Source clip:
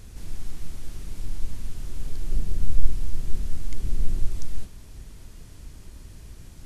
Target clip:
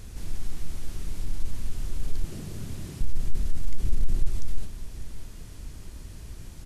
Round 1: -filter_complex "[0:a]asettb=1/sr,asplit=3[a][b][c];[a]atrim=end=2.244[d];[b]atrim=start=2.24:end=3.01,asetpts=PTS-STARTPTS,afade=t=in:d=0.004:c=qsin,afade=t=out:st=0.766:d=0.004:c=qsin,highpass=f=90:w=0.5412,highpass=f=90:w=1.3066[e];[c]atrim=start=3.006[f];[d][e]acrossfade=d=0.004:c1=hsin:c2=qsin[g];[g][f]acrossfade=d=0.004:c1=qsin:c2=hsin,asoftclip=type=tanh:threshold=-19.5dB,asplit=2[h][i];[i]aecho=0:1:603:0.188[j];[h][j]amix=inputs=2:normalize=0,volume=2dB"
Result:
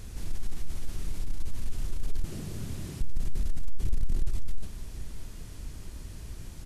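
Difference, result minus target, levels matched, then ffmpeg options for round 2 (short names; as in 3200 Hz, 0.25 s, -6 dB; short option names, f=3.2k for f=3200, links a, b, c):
soft clip: distortion +7 dB
-filter_complex "[0:a]asettb=1/sr,asplit=3[a][b][c];[a]atrim=end=2.244[d];[b]atrim=start=2.24:end=3.01,asetpts=PTS-STARTPTS,afade=t=in:d=0.004:c=qsin,afade=t=out:st=0.766:d=0.004:c=qsin,highpass=f=90:w=0.5412,highpass=f=90:w=1.3066[e];[c]atrim=start=3.006[f];[d][e]acrossfade=d=0.004:c1=hsin:c2=qsin[g];[g][f]acrossfade=d=0.004:c1=qsin:c2=hsin,asoftclip=type=tanh:threshold=-12.5dB,asplit=2[h][i];[i]aecho=0:1:603:0.188[j];[h][j]amix=inputs=2:normalize=0,volume=2dB"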